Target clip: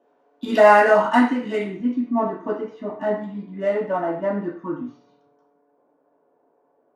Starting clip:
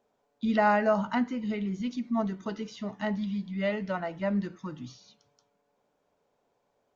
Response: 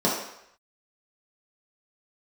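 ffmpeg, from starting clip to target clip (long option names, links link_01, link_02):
-filter_complex "[0:a]asetnsamples=nb_out_samples=441:pad=0,asendcmd='1.65 equalizer g -7.5',equalizer=frequency=4500:width_type=o:width=2.5:gain=10,adynamicsmooth=sensitivity=7:basefreq=2800[link_01];[1:a]atrim=start_sample=2205,asetrate=70560,aresample=44100[link_02];[link_01][link_02]afir=irnorm=-1:irlink=0,volume=-4.5dB"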